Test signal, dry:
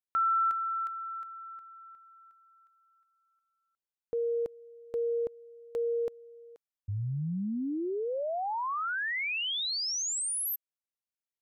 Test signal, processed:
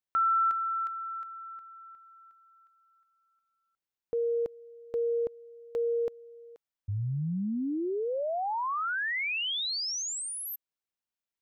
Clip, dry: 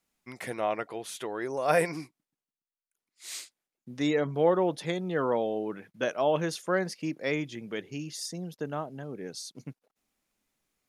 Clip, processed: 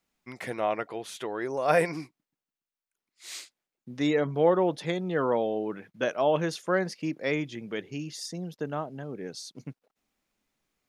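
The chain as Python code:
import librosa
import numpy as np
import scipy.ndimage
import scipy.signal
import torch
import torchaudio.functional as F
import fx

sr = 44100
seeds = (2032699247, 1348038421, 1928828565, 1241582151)

y = fx.peak_eq(x, sr, hz=11000.0, db=-6.5, octaves=1.2)
y = y * librosa.db_to_amplitude(1.5)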